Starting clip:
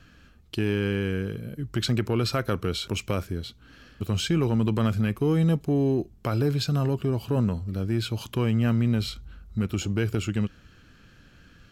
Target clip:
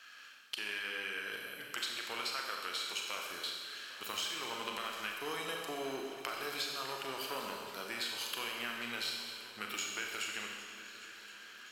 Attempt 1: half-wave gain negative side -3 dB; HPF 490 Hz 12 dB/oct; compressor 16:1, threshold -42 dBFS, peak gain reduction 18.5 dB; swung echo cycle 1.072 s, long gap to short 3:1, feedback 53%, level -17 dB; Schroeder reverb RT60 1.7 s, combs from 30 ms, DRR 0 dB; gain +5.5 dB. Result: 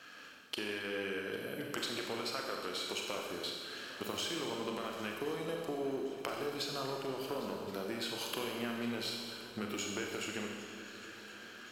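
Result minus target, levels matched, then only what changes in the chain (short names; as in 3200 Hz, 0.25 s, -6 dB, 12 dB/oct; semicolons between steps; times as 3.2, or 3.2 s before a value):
500 Hz band +6.5 dB
change: HPF 1300 Hz 12 dB/oct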